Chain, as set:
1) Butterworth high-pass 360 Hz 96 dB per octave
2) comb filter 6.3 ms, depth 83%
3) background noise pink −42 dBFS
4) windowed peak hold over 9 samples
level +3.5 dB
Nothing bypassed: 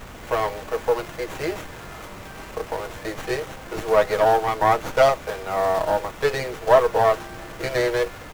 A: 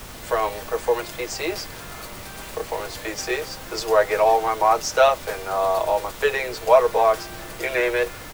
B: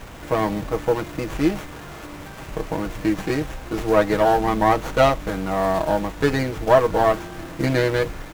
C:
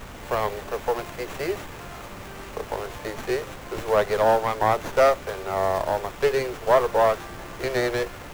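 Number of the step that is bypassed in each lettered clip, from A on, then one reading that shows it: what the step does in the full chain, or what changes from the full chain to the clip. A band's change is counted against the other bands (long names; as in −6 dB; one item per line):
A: 4, 125 Hz band −7.5 dB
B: 1, 250 Hz band +10.5 dB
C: 2, change in integrated loudness −2.0 LU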